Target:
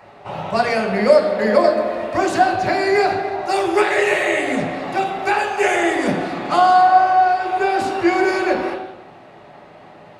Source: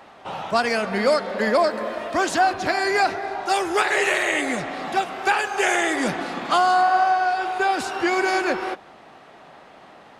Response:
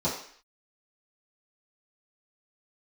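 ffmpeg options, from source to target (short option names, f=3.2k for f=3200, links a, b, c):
-filter_complex "[0:a]asplit=2[a][b];[1:a]atrim=start_sample=2205,asetrate=28224,aresample=44100[c];[b][c]afir=irnorm=-1:irlink=0,volume=-11.5dB[d];[a][d]amix=inputs=2:normalize=0,volume=-1dB"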